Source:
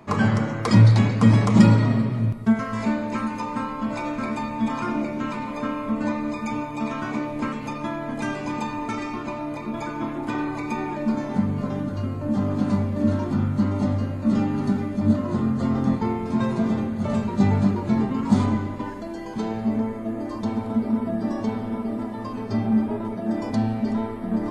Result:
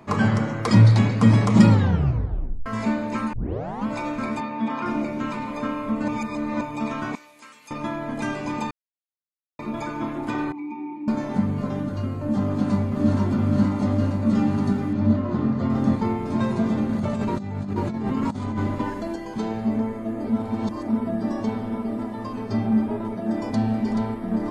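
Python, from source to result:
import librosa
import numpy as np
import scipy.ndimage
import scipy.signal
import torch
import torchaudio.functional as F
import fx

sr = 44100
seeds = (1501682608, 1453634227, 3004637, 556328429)

y = fx.bandpass_edges(x, sr, low_hz=190.0, high_hz=3700.0, at=(4.4, 4.86))
y = fx.differentiator(y, sr, at=(7.15, 7.71))
y = fx.vowel_filter(y, sr, vowel='u', at=(10.52, 11.08))
y = fx.echo_throw(y, sr, start_s=12.44, length_s=0.72, ms=470, feedback_pct=85, wet_db=-4.0)
y = fx.air_absorb(y, sr, metres=130.0, at=(14.93, 15.7))
y = fx.over_compress(y, sr, threshold_db=-26.0, ratio=-1.0, at=(16.89, 19.16))
y = fx.echo_throw(y, sr, start_s=23.22, length_s=0.49, ms=430, feedback_pct=15, wet_db=-7.0)
y = fx.edit(y, sr, fx.tape_stop(start_s=1.69, length_s=0.97),
    fx.tape_start(start_s=3.33, length_s=0.53),
    fx.reverse_span(start_s=6.08, length_s=0.53),
    fx.silence(start_s=8.71, length_s=0.88),
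    fx.reverse_span(start_s=20.24, length_s=0.64), tone=tone)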